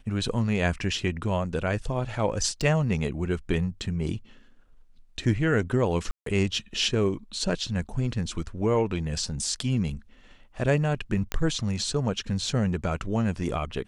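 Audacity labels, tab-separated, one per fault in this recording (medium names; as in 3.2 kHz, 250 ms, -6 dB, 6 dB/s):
2.610000	2.610000	dropout 2.2 ms
6.110000	6.260000	dropout 153 ms
11.320000	11.320000	pop -12 dBFS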